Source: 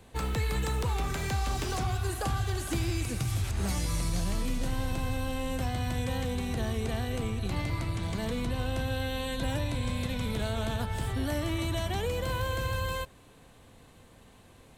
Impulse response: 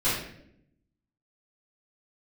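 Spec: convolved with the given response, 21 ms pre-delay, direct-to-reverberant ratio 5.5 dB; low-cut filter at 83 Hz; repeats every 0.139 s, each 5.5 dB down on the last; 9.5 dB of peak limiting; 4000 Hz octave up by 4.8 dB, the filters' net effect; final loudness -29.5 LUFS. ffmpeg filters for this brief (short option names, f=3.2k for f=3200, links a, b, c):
-filter_complex "[0:a]highpass=83,equalizer=f=4k:t=o:g=6,alimiter=level_in=2.5dB:limit=-24dB:level=0:latency=1,volume=-2.5dB,aecho=1:1:139|278|417|556|695|834|973:0.531|0.281|0.149|0.079|0.0419|0.0222|0.0118,asplit=2[a][b];[1:a]atrim=start_sample=2205,adelay=21[c];[b][c]afir=irnorm=-1:irlink=0,volume=-18dB[d];[a][d]amix=inputs=2:normalize=0,volume=2.5dB"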